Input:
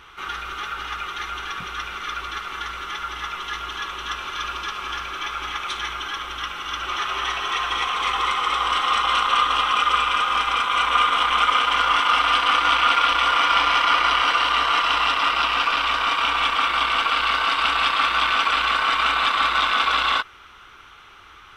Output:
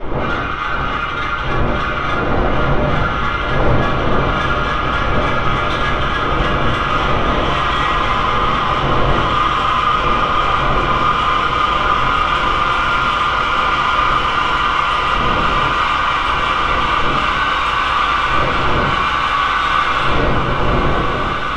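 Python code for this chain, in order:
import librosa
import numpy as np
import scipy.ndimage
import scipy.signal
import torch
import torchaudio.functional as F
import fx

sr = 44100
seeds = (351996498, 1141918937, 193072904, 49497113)

p1 = fx.dmg_wind(x, sr, seeds[0], corner_hz=640.0, level_db=-26.0)
p2 = scipy.signal.sosfilt(scipy.signal.butter(2, 3400.0, 'lowpass', fs=sr, output='sos'), p1)
p3 = fx.over_compress(p2, sr, threshold_db=-26.0, ratio=-1.0)
p4 = p2 + F.gain(torch.from_numpy(p3), 3.0).numpy()
p5 = 10.0 ** (-10.5 / 20.0) * np.tanh(p4 / 10.0 ** (-10.5 / 20.0))
p6 = p5 + fx.echo_diffused(p5, sr, ms=1717, feedback_pct=60, wet_db=-5, dry=0)
p7 = fx.room_shoebox(p6, sr, seeds[1], volume_m3=58.0, walls='mixed', distance_m=3.4)
y = F.gain(torch.from_numpy(p7), -15.5).numpy()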